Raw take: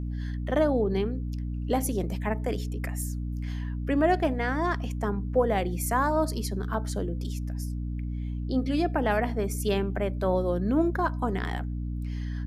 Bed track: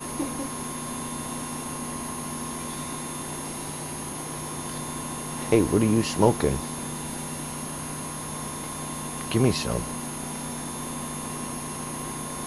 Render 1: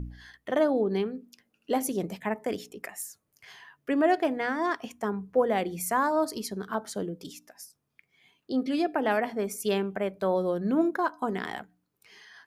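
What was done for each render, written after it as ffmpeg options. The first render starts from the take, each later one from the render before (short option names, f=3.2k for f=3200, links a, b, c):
-af "bandreject=f=60:t=h:w=4,bandreject=f=120:t=h:w=4,bandreject=f=180:t=h:w=4,bandreject=f=240:t=h:w=4,bandreject=f=300:t=h:w=4"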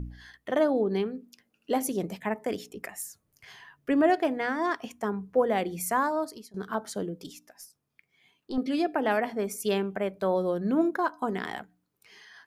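-filter_complex "[0:a]asettb=1/sr,asplit=3[a][b][c];[a]atrim=end=2.744[d];[b]atrim=start=2.74:end=4.1,asetpts=PTS-STARTPTS,afade=t=in:d=0.004:c=qsin,afade=t=out:st=1.356:d=0.004:c=qsin,lowshelf=f=150:g=10[e];[c]atrim=start=4.096[f];[d][e]acrossfade=d=0.004:c1=hsin:c2=qsin[g];[g][f]acrossfade=d=0.004:c1=qsin:c2=hsin,asettb=1/sr,asplit=3[h][i][j];[h]atrim=end=7.264[k];[i]atrim=start=7.26:end=8.58,asetpts=PTS-STARTPTS,afade=t=in:d=0.004:c=qsin,afade=t=out:st=1.316:d=0.004:c=qsin,aeval=exprs='(tanh(14.1*val(0)+0.45)-tanh(0.45))/14.1':c=same[l];[j]atrim=start=8.576[m];[k][l]acrossfade=d=0.004:c1=hsin:c2=qsin[n];[n][m]acrossfade=d=0.004:c1=qsin:c2=hsin,asplit=2[o][p];[o]atrim=end=6.54,asetpts=PTS-STARTPTS,afade=t=out:st=5.98:d=0.56:silence=0.0668344[q];[p]atrim=start=6.54,asetpts=PTS-STARTPTS,afade=t=in:d=0.004:c=hsin:silence=0.0668344[r];[q][r]concat=n=2:v=0:a=1"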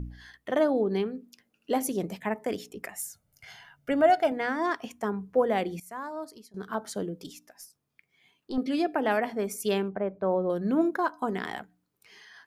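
-filter_complex "[0:a]asettb=1/sr,asplit=3[a][b][c];[a]atrim=end=2.964[d];[b]atrim=start=2.96:end=4.32,asetpts=PTS-STARTPTS,afade=t=in:d=0.004:c=qsin,afade=t=out:st=1.356:d=0.004:c=qsin,aecho=1:1:1.4:0.65,atrim=end_sample=59976[e];[c]atrim=start=4.316[f];[d][e]acrossfade=d=0.004:c1=hsin:c2=qsin[g];[g][f]acrossfade=d=0.004:c1=qsin:c2=hsin,asettb=1/sr,asplit=3[h][i][j];[h]atrim=end=9.884[k];[i]atrim=start=9.88:end=10.5,asetpts=PTS-STARTPTS,afade=t=in:d=0.004:c=qsin,afade=t=out:st=0.616:d=0.004:c=qsin,lowpass=1.3k[l];[j]atrim=start=10.496[m];[k][l]acrossfade=d=0.004:c1=hsin:c2=qsin[n];[n][m]acrossfade=d=0.004:c1=qsin:c2=hsin,asplit=2[o][p];[o]atrim=end=5.8,asetpts=PTS-STARTPTS,afade=t=out:st=5.796:d=0.004:c=hsin:silence=0.1[q];[p]atrim=start=5.8,asetpts=PTS-STARTPTS,afade=t=in:d=1.1:silence=0.1[r];[q][r]concat=n=2:v=0:a=1"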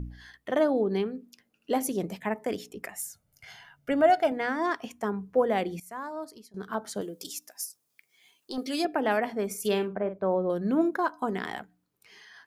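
-filter_complex "[0:a]asettb=1/sr,asplit=3[a][b][c];[a]atrim=end=7.014[d];[b]atrim=start=7.01:end=8.85,asetpts=PTS-STARTPTS,afade=t=in:d=0.004:c=qsin,afade=t=out:st=1.836:d=0.004:c=qsin,bass=f=250:g=-11,treble=f=4k:g=13[e];[c]atrim=start=8.846[f];[d][e]acrossfade=d=0.004:c1=hsin:c2=qsin[g];[g][f]acrossfade=d=0.004:c1=qsin:c2=hsin,asettb=1/sr,asplit=3[h][i][j];[h]atrim=end=9.464[k];[i]atrim=start=9.46:end=10.27,asetpts=PTS-STARTPTS,afade=t=in:d=0.004:c=qsin,afade=t=out:st=0.806:d=0.004:c=qsin,asplit=2[l][m];[m]adelay=48,volume=-10dB[n];[l][n]amix=inputs=2:normalize=0,atrim=end_sample=35721[o];[j]atrim=start=10.266[p];[k][o]acrossfade=d=0.004:c1=hsin:c2=qsin[q];[q][p]acrossfade=d=0.004:c1=qsin:c2=hsin"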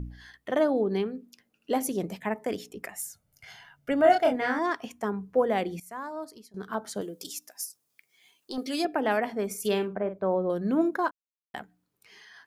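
-filter_complex "[0:a]asettb=1/sr,asplit=3[a][b][c];[a]atrim=end=4.024[d];[b]atrim=start=4.02:end=4.59,asetpts=PTS-STARTPTS,afade=t=in:d=0.004:c=qsin,afade=t=out:st=0.566:d=0.004:c=qsin,asplit=2[e][f];[f]adelay=28,volume=-2.5dB[g];[e][g]amix=inputs=2:normalize=0,atrim=end_sample=25137[h];[c]atrim=start=4.586[i];[d][h]acrossfade=d=0.004:c1=hsin:c2=qsin[j];[j][i]acrossfade=d=0.004:c1=qsin:c2=hsin,asplit=3[k][l][m];[k]atrim=end=11.11,asetpts=PTS-STARTPTS,afade=t=out:st=11.106:d=0.004:c=hsin[n];[l]atrim=start=11.11:end=11.54,asetpts=PTS-STARTPTS,volume=0[o];[m]atrim=start=11.54,asetpts=PTS-STARTPTS,afade=t=in:d=0.004:c=hsin[p];[n][o][p]concat=n=3:v=0:a=1"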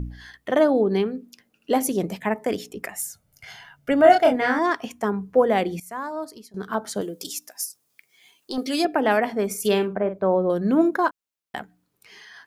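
-af "volume=6dB"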